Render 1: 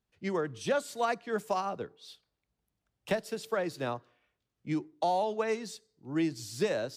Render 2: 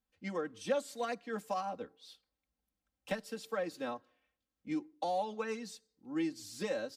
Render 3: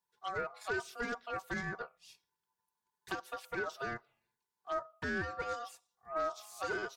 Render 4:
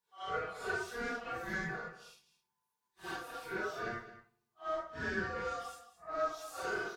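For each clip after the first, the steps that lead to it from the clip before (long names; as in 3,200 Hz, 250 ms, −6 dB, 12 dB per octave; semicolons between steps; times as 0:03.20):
comb filter 3.8 ms, depth 88%; level −7.5 dB
tube saturation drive 34 dB, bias 0.5; phaser swept by the level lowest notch 260 Hz, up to 2,100 Hz, full sweep at −38.5 dBFS; ring modulation 950 Hz; level +7 dB
random phases in long frames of 200 ms; single-tap delay 215 ms −14.5 dB; on a send at −21 dB: convolution reverb RT60 0.90 s, pre-delay 12 ms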